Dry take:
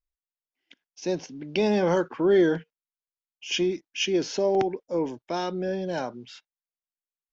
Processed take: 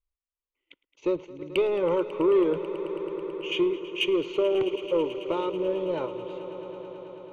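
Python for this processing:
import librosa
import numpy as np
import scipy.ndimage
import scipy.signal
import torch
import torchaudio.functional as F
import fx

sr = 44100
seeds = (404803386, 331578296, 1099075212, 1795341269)

p1 = fx.lowpass(x, sr, hz=1700.0, slope=6)
p2 = fx.level_steps(p1, sr, step_db=16)
p3 = p1 + (p2 * 10.0 ** (-1.0 / 20.0))
p4 = fx.transient(p3, sr, attack_db=5, sustain_db=-3)
p5 = 10.0 ** (-14.5 / 20.0) * np.tanh(p4 / 10.0 ** (-14.5 / 20.0))
p6 = fx.fixed_phaser(p5, sr, hz=1100.0, stages=8)
y = fx.echo_swell(p6, sr, ms=109, loudest=5, wet_db=-17)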